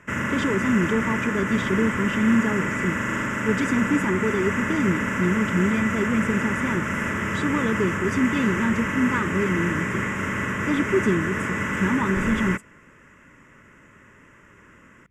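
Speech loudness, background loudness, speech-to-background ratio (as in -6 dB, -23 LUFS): -25.0 LUFS, -25.5 LUFS, 0.5 dB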